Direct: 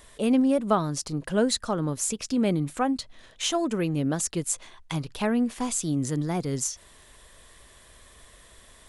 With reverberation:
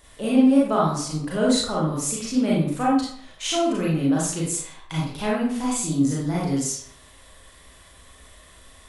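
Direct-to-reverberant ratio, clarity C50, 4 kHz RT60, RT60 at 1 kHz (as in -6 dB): -6.0 dB, 0.5 dB, 0.45 s, 0.60 s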